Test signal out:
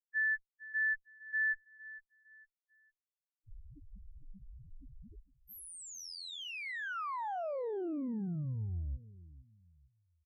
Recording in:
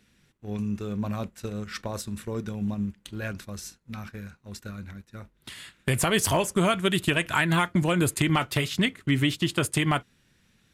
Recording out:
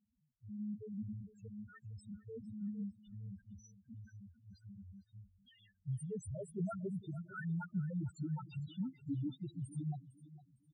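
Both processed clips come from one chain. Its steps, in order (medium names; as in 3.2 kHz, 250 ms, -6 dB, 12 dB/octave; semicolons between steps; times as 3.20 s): one-sided clip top -22.5 dBFS; loudest bins only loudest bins 1; feedback delay 456 ms, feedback 30%, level -17 dB; trim -6.5 dB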